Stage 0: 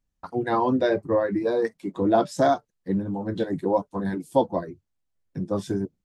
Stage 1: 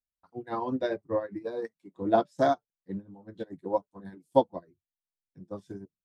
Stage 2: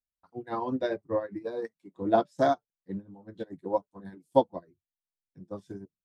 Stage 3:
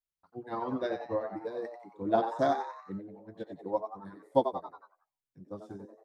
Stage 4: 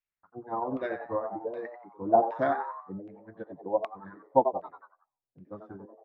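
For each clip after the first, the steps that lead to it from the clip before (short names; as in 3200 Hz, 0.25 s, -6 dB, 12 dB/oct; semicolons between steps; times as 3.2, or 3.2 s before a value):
upward expander 2.5:1, over -31 dBFS
nothing audible
frequency-shifting echo 91 ms, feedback 46%, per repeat +120 Hz, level -8.5 dB; gain -3.5 dB
wow and flutter 24 cents; LFO low-pass saw down 1.3 Hz 610–2600 Hz; gain -1 dB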